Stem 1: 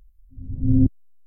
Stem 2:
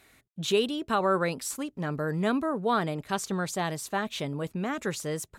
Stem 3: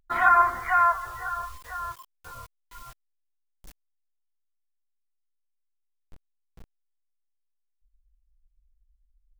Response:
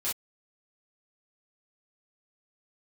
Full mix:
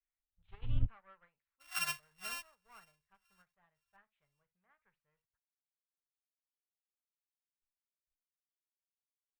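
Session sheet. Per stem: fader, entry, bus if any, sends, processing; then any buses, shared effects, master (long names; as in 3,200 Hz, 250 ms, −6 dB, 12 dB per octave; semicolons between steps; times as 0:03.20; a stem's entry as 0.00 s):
−1.5 dB, 0.00 s, no send, downward expander −43 dBFS
−1.0 dB, 0.00 s, send −12.5 dB, asymmetric clip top −31 dBFS, bottom −19.5 dBFS; low-pass filter 2,100 Hz 24 dB per octave
−8.0 dB, 1.50 s, no send, samples sorted by size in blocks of 16 samples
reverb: on, pre-delay 3 ms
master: guitar amp tone stack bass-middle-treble 10-0-10; expander for the loud parts 2.5 to 1, over −47 dBFS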